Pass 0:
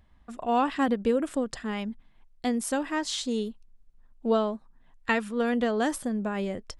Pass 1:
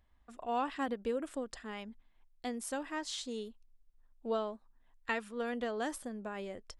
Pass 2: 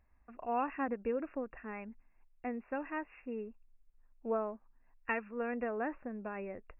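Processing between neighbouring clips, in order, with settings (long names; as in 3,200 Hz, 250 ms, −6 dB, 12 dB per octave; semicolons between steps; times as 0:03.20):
parametric band 150 Hz −10 dB 1.2 octaves; level −8.5 dB
linear-phase brick-wall low-pass 2,800 Hz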